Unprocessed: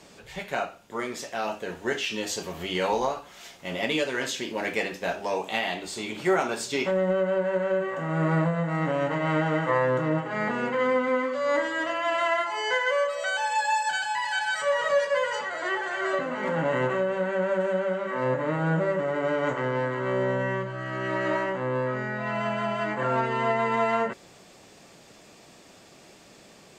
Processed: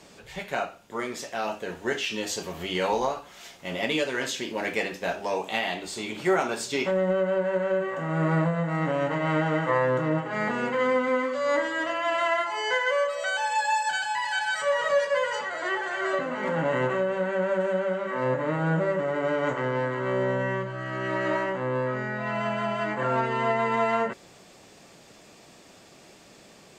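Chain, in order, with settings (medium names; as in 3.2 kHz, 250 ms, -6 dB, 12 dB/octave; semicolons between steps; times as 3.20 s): 10.33–11.55 s: treble shelf 5.2 kHz +5 dB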